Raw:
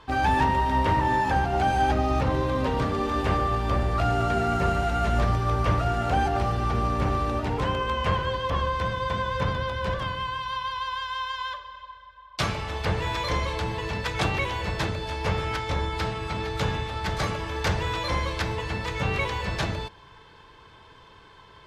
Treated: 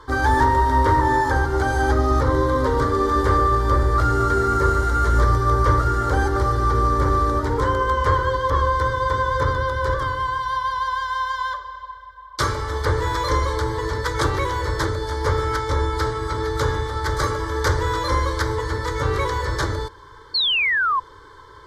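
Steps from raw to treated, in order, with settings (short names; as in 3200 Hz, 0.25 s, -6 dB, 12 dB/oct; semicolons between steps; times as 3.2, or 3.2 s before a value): fixed phaser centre 710 Hz, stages 6; painted sound fall, 20.34–21, 1000–4500 Hz -28 dBFS; gain +8.5 dB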